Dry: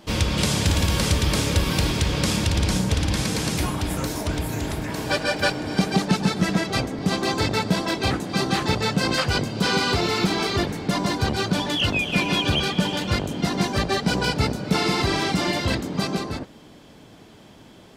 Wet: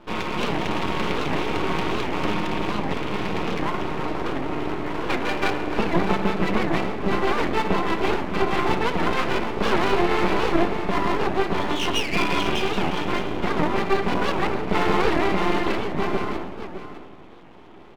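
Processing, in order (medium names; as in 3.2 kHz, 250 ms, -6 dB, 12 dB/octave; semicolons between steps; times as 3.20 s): cabinet simulation 270–2600 Hz, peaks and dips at 400 Hz +7 dB, 570 Hz -9 dB, 1 kHz +6 dB, 1.6 kHz -9 dB; simulated room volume 1100 m³, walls mixed, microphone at 0.92 m; half-wave rectifier; on a send: delay 610 ms -11 dB; on the sum: warped record 78 rpm, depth 250 cents; trim +5 dB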